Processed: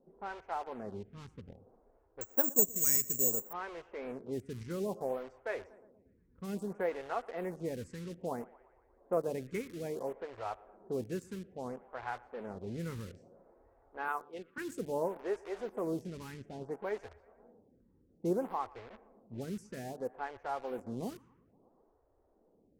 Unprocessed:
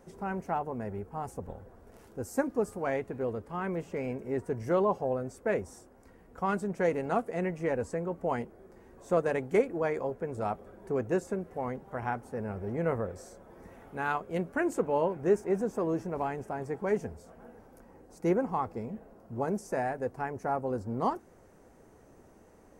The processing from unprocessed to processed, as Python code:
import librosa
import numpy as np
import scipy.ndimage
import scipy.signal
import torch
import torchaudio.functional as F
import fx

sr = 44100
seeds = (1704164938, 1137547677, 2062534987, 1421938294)

p1 = fx.cabinet(x, sr, low_hz=320.0, low_slope=24, high_hz=4100.0, hz=(350.0, 620.0, 1200.0, 3500.0), db=(-4, -8, 5, 7), at=(14.08, 14.58))
p2 = fx.quant_dither(p1, sr, seeds[0], bits=6, dither='none')
p3 = p1 + (p2 * librosa.db_to_amplitude(-4.5))
p4 = fx.env_lowpass(p3, sr, base_hz=620.0, full_db=-24.0)
p5 = fx.echo_bbd(p4, sr, ms=118, stages=2048, feedback_pct=61, wet_db=-22)
p6 = fx.resample_bad(p5, sr, factor=6, down='filtered', up='zero_stuff', at=(2.21, 3.53))
p7 = fx.stagger_phaser(p6, sr, hz=0.6)
y = p7 * librosa.db_to_amplitude(-8.5)